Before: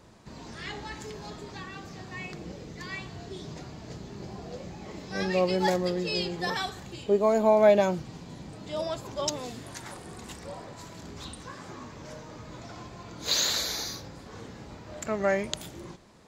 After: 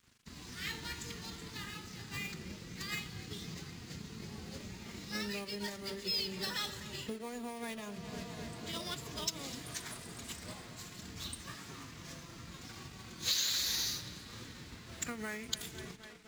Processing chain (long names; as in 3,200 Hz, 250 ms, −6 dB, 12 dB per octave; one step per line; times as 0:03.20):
in parallel at −11 dB: sample-rate reduction 9,600 Hz
on the sum: mains-hum notches 60/120/180/240/300/360/420/480/540/600 Hz
tape delay 254 ms, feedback 89%, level −16.5 dB, low-pass 3,500 Hz
downward compressor 16 to 1, threshold −29 dBFS, peak gain reduction 17.5 dB
dead-zone distortion −51 dBFS
low-shelf EQ 200 Hz −9.5 dB
phase-vocoder pitch shift with formants kept +1.5 semitones
guitar amp tone stack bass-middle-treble 6-0-2
level +18 dB